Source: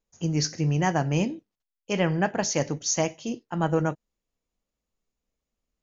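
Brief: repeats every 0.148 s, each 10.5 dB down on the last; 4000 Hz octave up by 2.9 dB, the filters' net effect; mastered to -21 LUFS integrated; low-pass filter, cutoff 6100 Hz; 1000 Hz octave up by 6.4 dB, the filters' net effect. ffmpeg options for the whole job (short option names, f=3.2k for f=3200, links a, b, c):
-af "lowpass=6.1k,equalizer=f=1k:t=o:g=8.5,equalizer=f=4k:t=o:g=5.5,aecho=1:1:148|296|444:0.299|0.0896|0.0269,volume=3.5dB"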